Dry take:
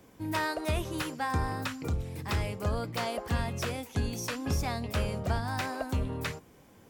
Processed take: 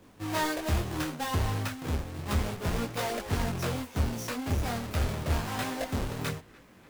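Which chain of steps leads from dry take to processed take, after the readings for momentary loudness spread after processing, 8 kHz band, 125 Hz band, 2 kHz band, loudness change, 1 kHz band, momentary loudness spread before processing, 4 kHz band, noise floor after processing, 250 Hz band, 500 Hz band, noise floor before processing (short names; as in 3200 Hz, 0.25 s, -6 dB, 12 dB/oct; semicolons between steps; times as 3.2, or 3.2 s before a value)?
4 LU, +2.5 dB, +1.5 dB, -0.5 dB, +1.0 dB, 0.0 dB, 4 LU, +1.0 dB, -55 dBFS, +1.5 dB, +0.5 dB, -57 dBFS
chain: half-waves squared off; narrowing echo 0.293 s, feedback 74%, band-pass 1900 Hz, level -22.5 dB; detuned doubles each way 11 cents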